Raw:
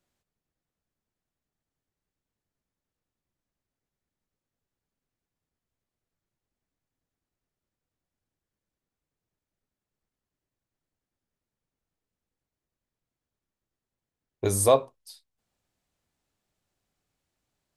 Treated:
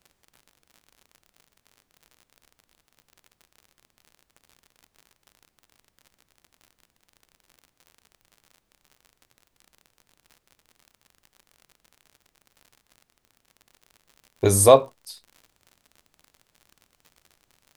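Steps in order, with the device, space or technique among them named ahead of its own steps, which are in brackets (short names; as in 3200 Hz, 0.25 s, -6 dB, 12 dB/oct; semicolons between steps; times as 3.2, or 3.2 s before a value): vinyl LP (crackle 59/s -45 dBFS; pink noise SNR 43 dB); gain +6.5 dB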